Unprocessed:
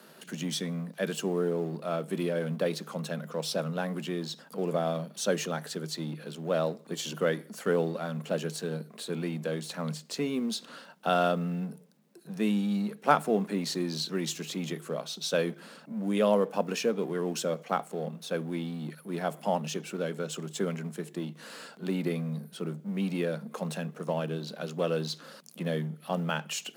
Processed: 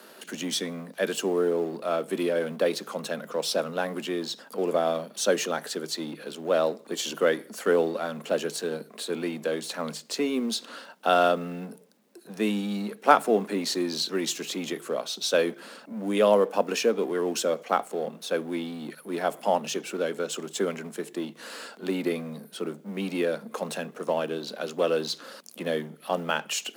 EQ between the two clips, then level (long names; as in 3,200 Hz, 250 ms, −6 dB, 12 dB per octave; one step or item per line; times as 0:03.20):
high-pass filter 240 Hz 24 dB per octave
+5.0 dB